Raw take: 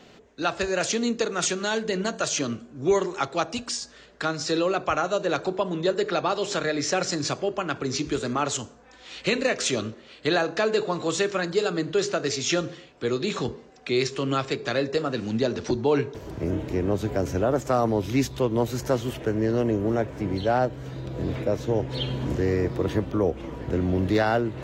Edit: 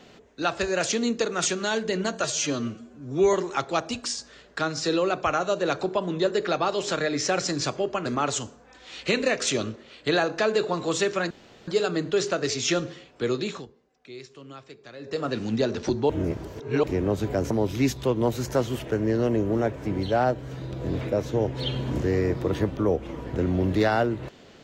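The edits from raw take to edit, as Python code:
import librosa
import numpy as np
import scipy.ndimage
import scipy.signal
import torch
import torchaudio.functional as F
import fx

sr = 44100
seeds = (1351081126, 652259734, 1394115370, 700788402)

y = fx.edit(x, sr, fx.stretch_span(start_s=2.24, length_s=0.73, factor=1.5),
    fx.cut(start_s=7.69, length_s=0.55),
    fx.insert_room_tone(at_s=11.49, length_s=0.37),
    fx.fade_down_up(start_s=13.18, length_s=1.92, db=-18.0, fade_s=0.3),
    fx.reverse_span(start_s=15.91, length_s=0.74),
    fx.cut(start_s=17.32, length_s=0.53), tone=tone)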